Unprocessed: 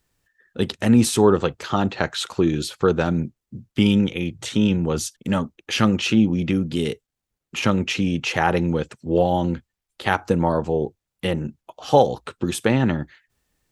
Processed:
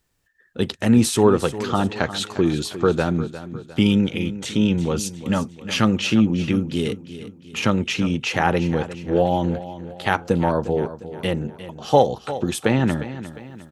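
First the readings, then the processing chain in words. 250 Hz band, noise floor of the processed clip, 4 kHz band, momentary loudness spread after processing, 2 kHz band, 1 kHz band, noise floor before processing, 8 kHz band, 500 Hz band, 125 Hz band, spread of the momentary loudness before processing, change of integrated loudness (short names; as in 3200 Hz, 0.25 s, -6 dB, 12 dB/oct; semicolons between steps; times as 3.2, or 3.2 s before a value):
0.0 dB, -48 dBFS, 0.0 dB, 12 LU, 0.0 dB, 0.0 dB, -84 dBFS, 0.0 dB, 0.0 dB, +0.5 dB, 11 LU, 0.0 dB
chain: feedback echo 0.354 s, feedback 45%, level -13.5 dB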